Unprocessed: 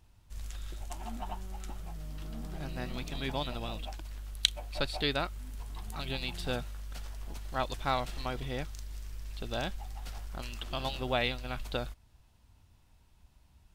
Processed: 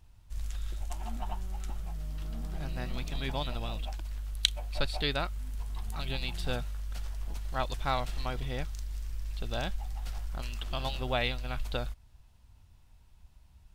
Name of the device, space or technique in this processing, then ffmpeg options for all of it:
low shelf boost with a cut just above: -af "lowshelf=f=72:g=7.5,equalizer=f=310:t=o:w=1.1:g=-3"

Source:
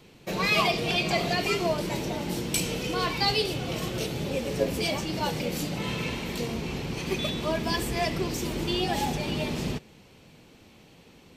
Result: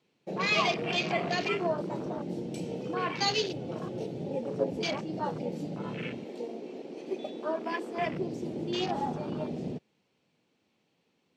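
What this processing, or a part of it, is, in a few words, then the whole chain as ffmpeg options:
over-cleaned archive recording: -filter_complex "[0:a]highpass=160,lowpass=7.6k,afwtdn=0.0251,asettb=1/sr,asplit=3[a][b][c];[a]atrim=end=6.244[d];[b]atrim=start=6.24:end=7.98,asetpts=PTS-STARTPTS,afade=t=in:d=0.004:c=qsin,afade=t=out:st=1.736:d=0.004:c=qsin,highpass=f=270:w=0.5412,highpass=f=270:w=1.3066[e];[c]atrim=start=7.976[f];[d][e]acrossfade=d=0.004:c1=hsin:c2=qsin[g];[g][f]acrossfade=d=0.004:c1=qsin:c2=hsin,volume=-2.5dB"

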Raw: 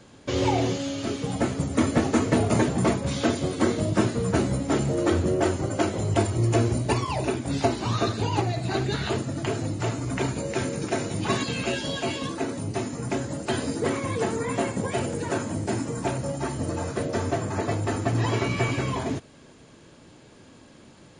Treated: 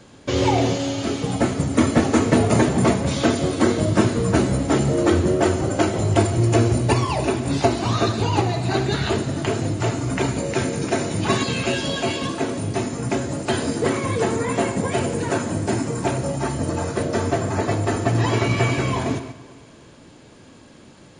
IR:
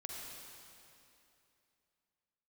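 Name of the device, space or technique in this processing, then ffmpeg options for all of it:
keyed gated reverb: -filter_complex "[0:a]asplit=3[a][b][c];[1:a]atrim=start_sample=2205[d];[b][d]afir=irnorm=-1:irlink=0[e];[c]apad=whole_len=934511[f];[e][f]sidechaingate=range=-7dB:threshold=-45dB:ratio=16:detection=peak,volume=-5dB[g];[a][g]amix=inputs=2:normalize=0,volume=2.5dB"

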